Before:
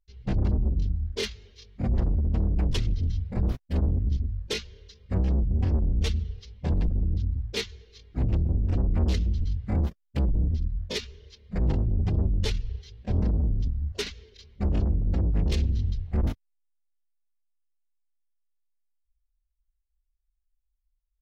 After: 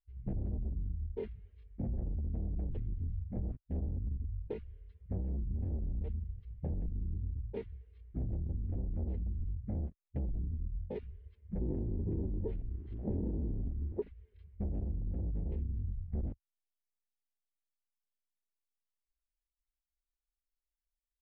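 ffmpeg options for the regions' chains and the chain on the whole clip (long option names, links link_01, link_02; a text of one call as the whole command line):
ffmpeg -i in.wav -filter_complex "[0:a]asettb=1/sr,asplit=3[link_01][link_02][link_03];[link_01]atrim=end=11.614[link_04];[link_02]atrim=start=11.61:end=14.02,asetpts=PTS-STARTPTS,afade=type=in:duration=0.004:curve=qsin,afade=type=out:start_time=2.406:duration=0.004:curve=qsin,aeval=exprs='val(0)+0.5*0.0112*sgn(val(0))':channel_layout=same,equalizer=frequency=340:width=0.97:gain=12,acrossover=split=700[link_05][link_06];[link_06]adelay=40[link_07];[link_05][link_07]amix=inputs=2:normalize=0,atrim=end_sample=106281[link_08];[link_03]atrim=start=14.016[link_09];[link_04][link_08]acrossfade=duration=0.004:curve1=hsin:curve2=qsin[link_10];[link_10][link_09]acrossfade=duration=0.004:curve1=qsin:curve2=hsin,lowpass=frequency=2300:width=0.5412,lowpass=frequency=2300:width=1.3066,afwtdn=0.0224,acompressor=threshold=-37dB:ratio=3" out.wav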